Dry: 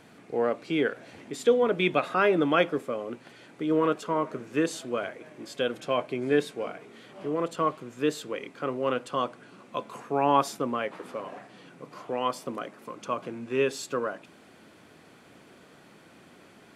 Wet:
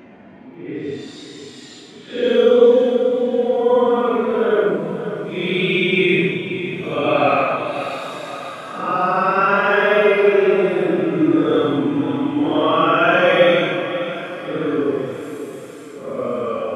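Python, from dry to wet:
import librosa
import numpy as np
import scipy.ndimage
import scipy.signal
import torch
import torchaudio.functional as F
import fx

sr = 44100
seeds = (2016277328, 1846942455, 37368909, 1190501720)

y = fx.env_lowpass(x, sr, base_hz=1500.0, full_db=-24.5)
y = fx.paulstretch(y, sr, seeds[0], factor=9.8, window_s=0.05, from_s=1.24)
y = fx.echo_feedback(y, sr, ms=540, feedback_pct=48, wet_db=-11)
y = F.gain(torch.from_numpy(y), 6.0).numpy()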